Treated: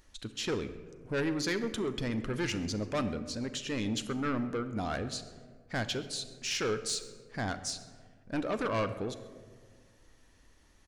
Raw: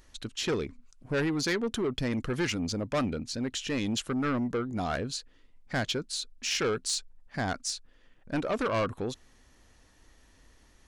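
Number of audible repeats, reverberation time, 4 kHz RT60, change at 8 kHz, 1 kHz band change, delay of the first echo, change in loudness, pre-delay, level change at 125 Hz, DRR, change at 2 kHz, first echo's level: 1, 1.7 s, 0.85 s, -3.0 dB, -3.0 dB, 133 ms, -3.0 dB, 9 ms, -2.5 dB, 9.5 dB, -3.0 dB, -22.0 dB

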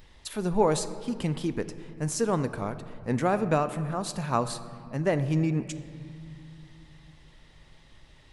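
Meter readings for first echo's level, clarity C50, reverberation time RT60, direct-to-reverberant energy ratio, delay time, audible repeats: no echo, 13.0 dB, 2.3 s, 11.5 dB, no echo, no echo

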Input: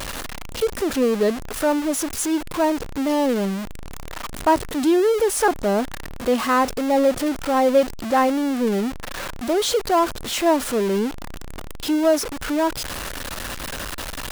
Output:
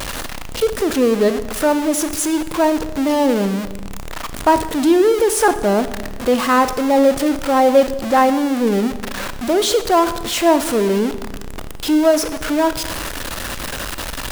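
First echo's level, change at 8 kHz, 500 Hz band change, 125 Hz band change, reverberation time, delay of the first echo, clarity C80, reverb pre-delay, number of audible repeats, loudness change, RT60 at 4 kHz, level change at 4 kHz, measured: no echo, +4.5 dB, +4.5 dB, +4.5 dB, 1.2 s, no echo, 14.5 dB, 27 ms, no echo, +4.5 dB, 1.0 s, +4.5 dB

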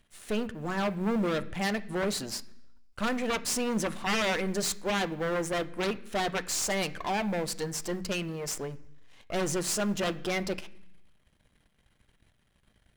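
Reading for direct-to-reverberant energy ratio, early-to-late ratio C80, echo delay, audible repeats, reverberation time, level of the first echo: 11.0 dB, 20.5 dB, no echo, no echo, 0.70 s, no echo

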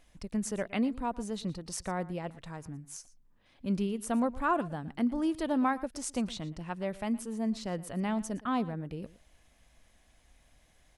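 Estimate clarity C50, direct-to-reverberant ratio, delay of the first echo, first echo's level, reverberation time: no reverb, no reverb, 116 ms, -19.0 dB, no reverb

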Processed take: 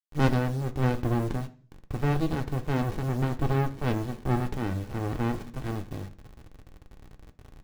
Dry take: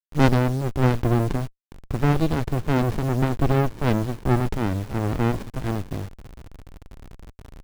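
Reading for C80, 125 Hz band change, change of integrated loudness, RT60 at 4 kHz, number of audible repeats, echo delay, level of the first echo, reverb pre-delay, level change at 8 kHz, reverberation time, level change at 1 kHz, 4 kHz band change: 21.5 dB, -5.5 dB, -6.0 dB, 0.50 s, no echo, no echo, no echo, 3 ms, -6.5 dB, 0.45 s, -5.5 dB, -6.0 dB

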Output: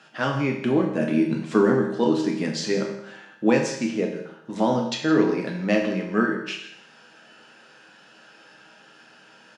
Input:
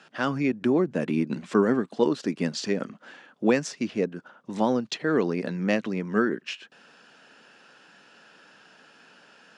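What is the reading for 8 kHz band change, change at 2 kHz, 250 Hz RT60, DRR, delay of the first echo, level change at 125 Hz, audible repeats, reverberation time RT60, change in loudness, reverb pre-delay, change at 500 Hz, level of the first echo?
+3.5 dB, +3.0 dB, 0.70 s, 0.0 dB, 166 ms, +3.5 dB, 1, 0.70 s, +3.0 dB, 6 ms, +3.0 dB, -14.5 dB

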